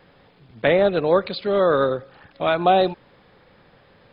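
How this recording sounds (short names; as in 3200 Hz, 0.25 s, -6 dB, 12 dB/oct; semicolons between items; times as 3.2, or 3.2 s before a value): noise floor -55 dBFS; spectral tilt -3.5 dB/oct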